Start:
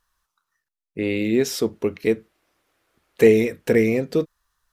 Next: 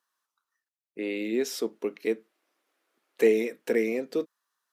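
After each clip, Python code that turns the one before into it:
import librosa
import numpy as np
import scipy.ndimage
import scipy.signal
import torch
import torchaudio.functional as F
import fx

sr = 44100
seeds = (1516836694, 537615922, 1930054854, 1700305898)

y = scipy.signal.sosfilt(scipy.signal.butter(4, 240.0, 'highpass', fs=sr, output='sos'), x)
y = y * librosa.db_to_amplitude(-7.0)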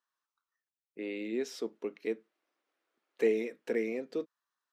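y = fx.peak_eq(x, sr, hz=13000.0, db=-12.0, octaves=1.1)
y = y * librosa.db_to_amplitude(-6.5)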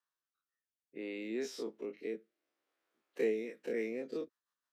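y = fx.spec_dilate(x, sr, span_ms=60)
y = fx.rotary_switch(y, sr, hz=0.6, then_hz=6.3, switch_at_s=3.12)
y = y * librosa.db_to_amplitude(-5.0)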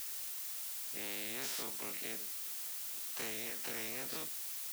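y = fx.dmg_noise_colour(x, sr, seeds[0], colour='blue', level_db=-58.0)
y = fx.spectral_comp(y, sr, ratio=4.0)
y = y * librosa.db_to_amplitude(-5.0)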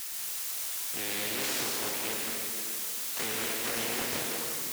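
y = fx.rev_plate(x, sr, seeds[1], rt60_s=2.4, hf_ratio=0.75, predelay_ms=100, drr_db=-1.5)
y = fx.doppler_dist(y, sr, depth_ms=0.58)
y = y * librosa.db_to_amplitude(7.0)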